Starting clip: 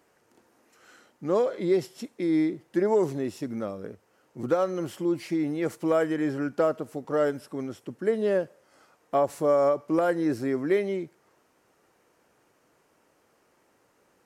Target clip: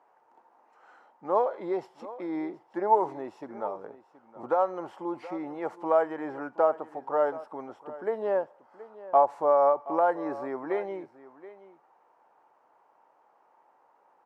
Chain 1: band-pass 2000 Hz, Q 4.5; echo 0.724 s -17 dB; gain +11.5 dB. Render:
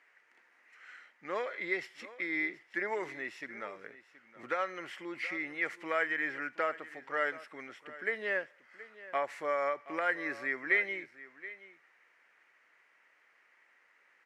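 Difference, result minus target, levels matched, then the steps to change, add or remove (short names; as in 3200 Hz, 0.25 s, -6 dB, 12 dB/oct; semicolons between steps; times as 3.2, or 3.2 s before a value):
2000 Hz band +18.5 dB
change: band-pass 870 Hz, Q 4.5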